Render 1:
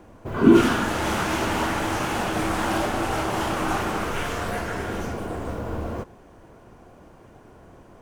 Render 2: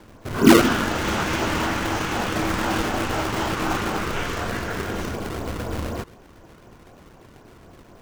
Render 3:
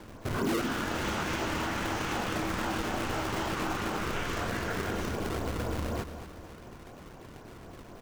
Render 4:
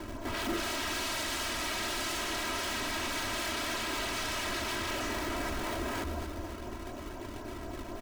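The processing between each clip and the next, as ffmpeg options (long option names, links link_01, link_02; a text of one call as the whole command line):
ffmpeg -i in.wav -filter_complex "[0:a]lowpass=frequency=7500:width=0.5412,lowpass=frequency=7500:width=1.3066,acrossover=split=800|1400[link_01][link_02][link_03];[link_01]acrusher=samples=31:mix=1:aa=0.000001:lfo=1:lforange=49.6:lforate=4[link_04];[link_04][link_02][link_03]amix=inputs=3:normalize=0,volume=1.5dB" out.wav
ffmpeg -i in.wav -af "aecho=1:1:226|452|678|904:0.168|0.0755|0.034|0.0153,asoftclip=type=hard:threshold=-12.5dB,acompressor=threshold=-29dB:ratio=6" out.wav
ffmpeg -i in.wav -af "aeval=exprs='0.0158*(abs(mod(val(0)/0.0158+3,4)-2)-1)':channel_layout=same,aecho=1:1:3.1:0.75,volume=4.5dB" out.wav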